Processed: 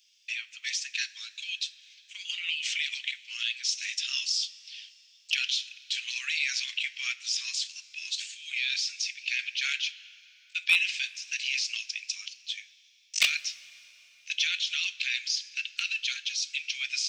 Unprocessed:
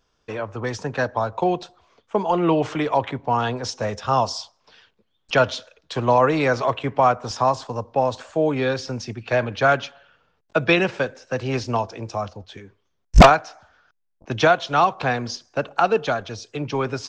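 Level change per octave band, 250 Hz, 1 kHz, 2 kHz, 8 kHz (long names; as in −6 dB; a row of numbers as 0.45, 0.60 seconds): below −40 dB, −36.5 dB, −3.5 dB, +5.0 dB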